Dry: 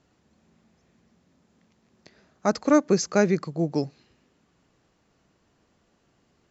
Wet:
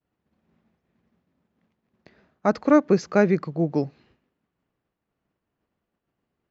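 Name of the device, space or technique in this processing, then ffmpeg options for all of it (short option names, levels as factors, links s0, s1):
hearing-loss simulation: -af "lowpass=3000,agate=range=0.0224:threshold=0.00158:ratio=3:detection=peak,volume=1.26"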